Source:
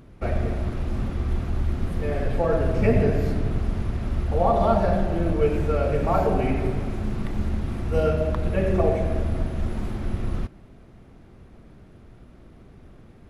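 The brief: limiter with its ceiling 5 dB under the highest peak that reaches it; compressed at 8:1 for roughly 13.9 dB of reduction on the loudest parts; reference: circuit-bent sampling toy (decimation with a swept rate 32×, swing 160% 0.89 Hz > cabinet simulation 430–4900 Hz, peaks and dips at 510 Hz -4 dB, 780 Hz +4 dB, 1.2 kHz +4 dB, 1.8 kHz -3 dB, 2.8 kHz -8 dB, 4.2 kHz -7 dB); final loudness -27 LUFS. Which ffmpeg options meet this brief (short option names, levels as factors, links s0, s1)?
-af "acompressor=threshold=0.0316:ratio=8,alimiter=level_in=1.26:limit=0.0631:level=0:latency=1,volume=0.794,acrusher=samples=32:mix=1:aa=0.000001:lfo=1:lforange=51.2:lforate=0.89,highpass=430,equalizer=f=510:t=q:w=4:g=-4,equalizer=f=780:t=q:w=4:g=4,equalizer=f=1200:t=q:w=4:g=4,equalizer=f=1800:t=q:w=4:g=-3,equalizer=f=2800:t=q:w=4:g=-8,equalizer=f=4200:t=q:w=4:g=-7,lowpass=f=4900:w=0.5412,lowpass=f=4900:w=1.3066,volume=7.08"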